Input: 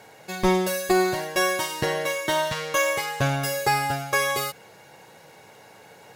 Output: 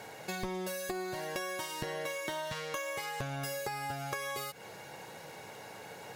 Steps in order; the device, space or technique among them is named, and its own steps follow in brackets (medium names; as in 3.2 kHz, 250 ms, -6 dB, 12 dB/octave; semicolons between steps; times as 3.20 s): serial compression, peaks first (compression, threshold -31 dBFS, peak gain reduction 14.5 dB; compression 2:1, threshold -40 dBFS, peak gain reduction 7 dB); trim +1.5 dB